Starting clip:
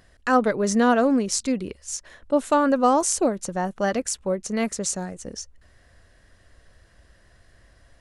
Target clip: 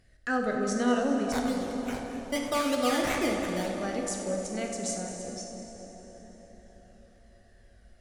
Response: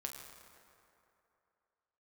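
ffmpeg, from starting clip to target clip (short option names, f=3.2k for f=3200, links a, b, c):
-filter_complex "[0:a]equalizer=f=990:t=o:w=0.26:g=-12,asettb=1/sr,asplit=3[a][b][c];[a]atrim=end=1.324[d];[b]atrim=start=1.32:end=3.79,asetpts=PTS-STARTPTS,afade=t=in:d=0.004:c=qsin,afade=t=out:st=2.466:d=0.004:c=qsin,acrusher=samples=13:mix=1:aa=0.000001:lfo=1:lforange=7.8:lforate=3.2[e];[c]atrim=start=3.786[f];[d][e]acrossfade=d=0.004:c1=hsin:c2=qsin[g];[g][f]acrossfade=d=0.004:c1=qsin:c2=hsin,flanger=delay=0.4:depth=1.1:regen=56:speed=0.31:shape=triangular[h];[1:a]atrim=start_sample=2205,asetrate=22932,aresample=44100[i];[h][i]afir=irnorm=-1:irlink=0,volume=-4dB"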